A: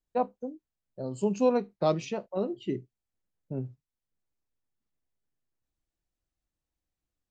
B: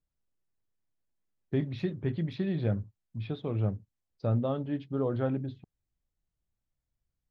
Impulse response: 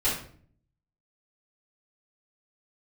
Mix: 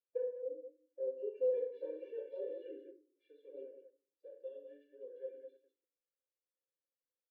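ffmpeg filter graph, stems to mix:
-filter_complex "[0:a]lowpass=1700,acompressor=threshold=0.0447:ratio=4,volume=0.708,asplit=3[s0][s1][s2];[s1]volume=0.398[s3];[s2]volume=0.335[s4];[1:a]highshelf=f=2600:g=6,volume=0.158,asplit=4[s5][s6][s7][s8];[s6]volume=0.316[s9];[s7]volume=0.531[s10];[s8]apad=whole_len=322233[s11];[s0][s11]sidechaincompress=threshold=0.00224:ratio=8:attack=16:release=828[s12];[2:a]atrim=start_sample=2205[s13];[s3][s9]amix=inputs=2:normalize=0[s14];[s14][s13]afir=irnorm=-1:irlink=0[s15];[s4][s10]amix=inputs=2:normalize=0,aecho=0:1:200:1[s16];[s12][s5][s15][s16]amix=inputs=4:normalize=0,asplit=3[s17][s18][s19];[s17]bandpass=f=530:t=q:w=8,volume=1[s20];[s18]bandpass=f=1840:t=q:w=8,volume=0.501[s21];[s19]bandpass=f=2480:t=q:w=8,volume=0.355[s22];[s20][s21][s22]amix=inputs=3:normalize=0,afftfilt=real='re*eq(mod(floor(b*sr/1024/300),2),1)':imag='im*eq(mod(floor(b*sr/1024/300),2),1)':win_size=1024:overlap=0.75"

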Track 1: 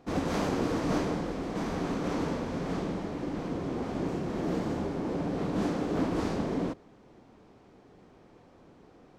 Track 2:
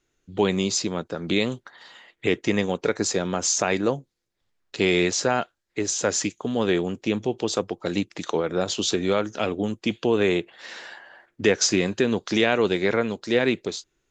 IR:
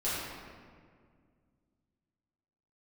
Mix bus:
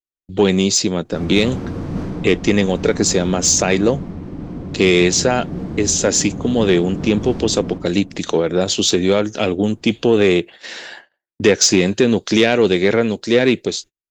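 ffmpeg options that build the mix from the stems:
-filter_complex "[0:a]bass=f=250:g=13,treble=f=4000:g=-3,adelay=1050,volume=0.251,asplit=2[s0][s1];[s1]volume=0.251[s2];[1:a]agate=range=0.01:threshold=0.00708:ratio=16:detection=peak,equalizer=f=1100:t=o:w=1.3:g=-7,volume=1.41[s3];[2:a]atrim=start_sample=2205[s4];[s2][s4]afir=irnorm=-1:irlink=0[s5];[s0][s3][s5]amix=inputs=3:normalize=0,acontrast=68"

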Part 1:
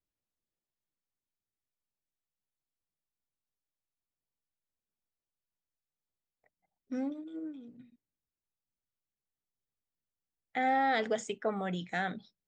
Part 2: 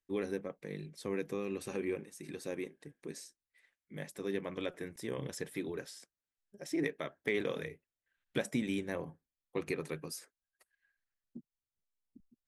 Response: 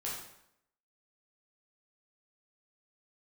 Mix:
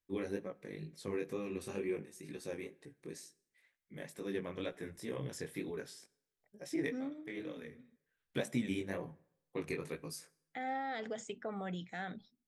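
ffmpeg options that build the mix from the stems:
-filter_complex "[0:a]alimiter=level_in=1.26:limit=0.0631:level=0:latency=1:release=58,volume=0.794,volume=0.501,asplit=2[s0][s1];[1:a]flanger=delay=16:depth=7.5:speed=2.1,volume=1,asplit=2[s2][s3];[s3]volume=0.0841[s4];[s1]apad=whole_len=550070[s5];[s2][s5]sidechaincompress=threshold=0.002:ratio=5:attack=16:release=775[s6];[2:a]atrim=start_sample=2205[s7];[s4][s7]afir=irnorm=-1:irlink=0[s8];[s0][s6][s8]amix=inputs=3:normalize=0,equalizer=f=93:w=0.95:g=3.5"

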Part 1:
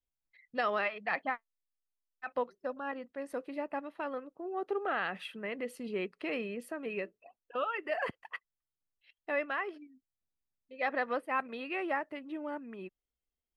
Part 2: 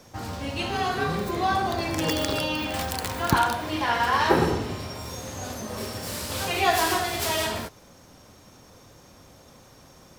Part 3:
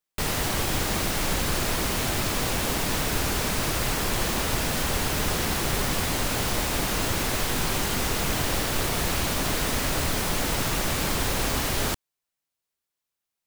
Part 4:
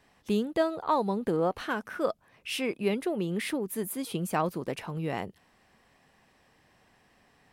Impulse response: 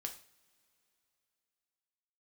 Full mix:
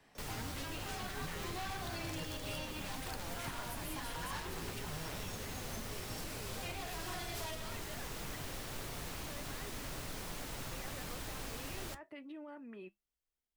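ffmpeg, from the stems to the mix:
-filter_complex "[0:a]acompressor=threshold=0.02:ratio=6,alimiter=level_in=4.47:limit=0.0631:level=0:latency=1:release=27,volume=0.224,volume=1.12,asplit=2[s0][s1];[1:a]volume=15.8,asoftclip=hard,volume=0.0631,adelay=150,volume=1.06[s2];[2:a]volume=0.299[s3];[3:a]aeval=exprs='0.02*(abs(mod(val(0)/0.02+3,4)-2)-1)':c=same,volume=1.33[s4];[s1]apad=whole_len=455752[s5];[s2][s5]sidechaincompress=threshold=0.00447:ratio=8:attack=5:release=160[s6];[s0][s6][s3][s4]amix=inputs=4:normalize=0,acrossover=split=140|1500[s7][s8][s9];[s7]acompressor=threshold=0.0112:ratio=4[s10];[s8]acompressor=threshold=0.00794:ratio=4[s11];[s9]acompressor=threshold=0.00891:ratio=4[s12];[s10][s11][s12]amix=inputs=3:normalize=0,flanger=delay=6.2:depth=1.8:regen=-72:speed=0.98:shape=triangular"

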